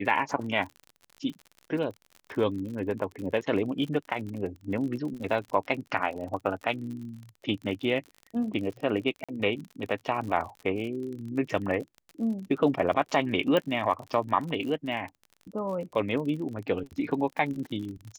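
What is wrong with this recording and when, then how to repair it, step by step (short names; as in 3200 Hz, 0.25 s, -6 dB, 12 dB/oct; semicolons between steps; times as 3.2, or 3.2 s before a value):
crackle 46/s -36 dBFS
9.24–9.29 gap 46 ms
13.57 pop -14 dBFS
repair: de-click; interpolate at 9.24, 46 ms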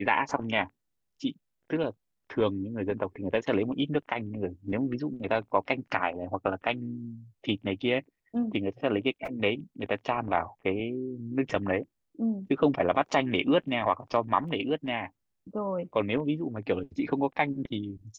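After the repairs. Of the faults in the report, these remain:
none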